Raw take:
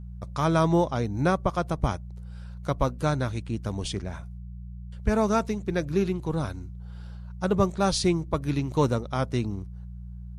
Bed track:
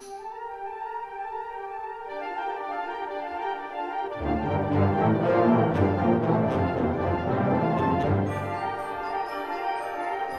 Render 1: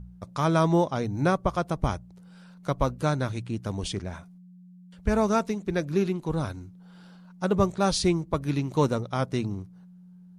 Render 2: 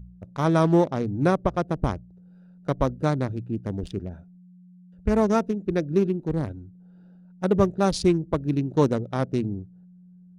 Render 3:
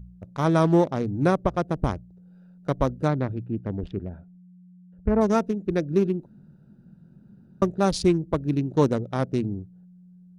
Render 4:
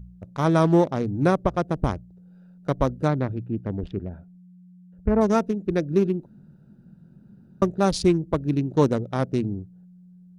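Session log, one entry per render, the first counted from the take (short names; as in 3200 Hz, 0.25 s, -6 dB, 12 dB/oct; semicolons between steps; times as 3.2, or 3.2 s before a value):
de-hum 60 Hz, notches 2
Wiener smoothing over 41 samples; dynamic EQ 330 Hz, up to +5 dB, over -37 dBFS, Q 0.74
3.07–5.2 LPF 3300 Hz -> 1500 Hz; 6.26–7.62 room tone
gain +1 dB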